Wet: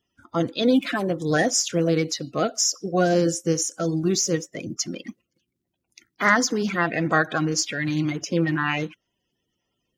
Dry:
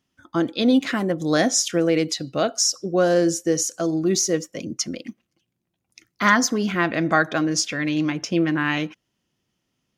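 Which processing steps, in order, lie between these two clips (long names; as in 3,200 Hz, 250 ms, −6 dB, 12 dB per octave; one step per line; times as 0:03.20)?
spectral magnitudes quantised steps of 30 dB
level −1 dB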